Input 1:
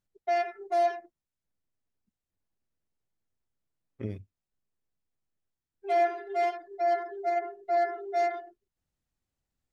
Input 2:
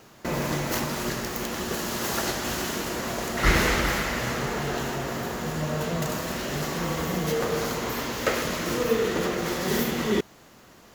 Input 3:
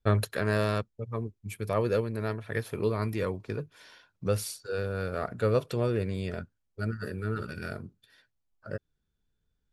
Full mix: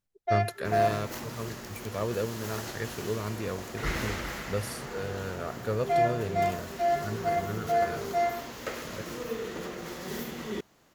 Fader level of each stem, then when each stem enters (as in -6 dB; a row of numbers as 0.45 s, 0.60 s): 0.0 dB, -11.0 dB, -4.0 dB; 0.00 s, 0.40 s, 0.25 s